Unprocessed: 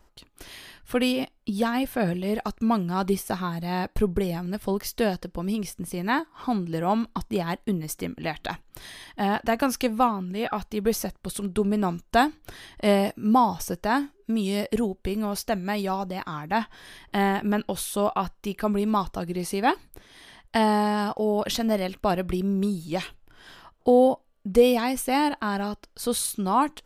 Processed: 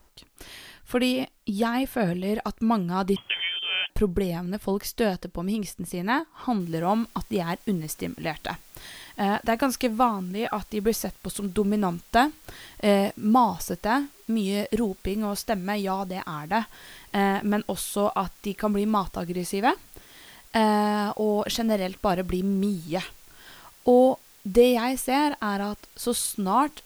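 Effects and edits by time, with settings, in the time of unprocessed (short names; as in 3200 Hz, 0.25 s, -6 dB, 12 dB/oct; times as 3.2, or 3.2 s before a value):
3.16–3.9 inverted band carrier 3300 Hz
6.6 noise floor step -69 dB -54 dB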